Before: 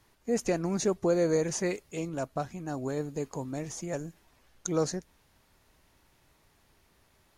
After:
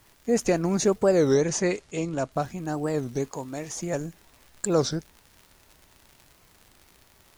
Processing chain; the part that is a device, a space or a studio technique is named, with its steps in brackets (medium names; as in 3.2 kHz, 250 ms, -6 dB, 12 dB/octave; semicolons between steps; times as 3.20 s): warped LP (warped record 33 1/3 rpm, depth 250 cents; crackle 85 per s -44 dBFS; white noise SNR 38 dB); 1.35–2.32 s: low-pass 8.7 kHz 24 dB/octave; 3.30–3.76 s: bass shelf 330 Hz -9 dB; trim +5.5 dB